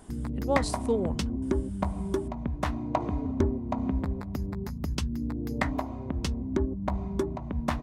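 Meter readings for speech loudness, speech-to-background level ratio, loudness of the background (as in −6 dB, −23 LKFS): −31.5 LKFS, 0.0 dB, −31.5 LKFS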